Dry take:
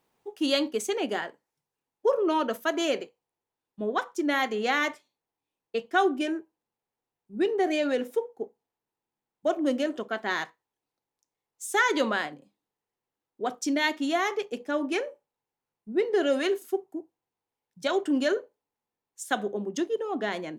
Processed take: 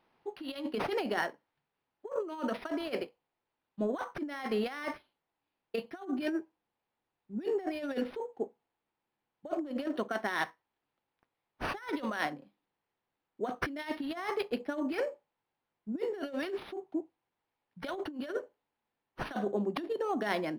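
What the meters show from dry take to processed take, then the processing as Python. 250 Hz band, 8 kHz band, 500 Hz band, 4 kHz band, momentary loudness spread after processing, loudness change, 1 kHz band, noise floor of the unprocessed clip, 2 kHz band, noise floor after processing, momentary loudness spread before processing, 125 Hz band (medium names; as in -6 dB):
-6.5 dB, -17.5 dB, -7.5 dB, -11.0 dB, 9 LU, -8.0 dB, -8.0 dB, under -85 dBFS, -9.0 dB, under -85 dBFS, 11 LU, no reading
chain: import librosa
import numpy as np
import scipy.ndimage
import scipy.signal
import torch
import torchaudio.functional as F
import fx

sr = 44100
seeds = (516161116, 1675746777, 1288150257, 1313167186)

y = fx.peak_eq(x, sr, hz=440.0, db=-4.5, octaves=0.37)
y = fx.over_compress(y, sr, threshold_db=-31.0, ratio=-0.5)
y = fx.low_shelf(y, sr, hz=170.0, db=-4.5)
y = np.interp(np.arange(len(y)), np.arange(len(y))[::6], y[::6])
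y = y * librosa.db_to_amplitude(-1.0)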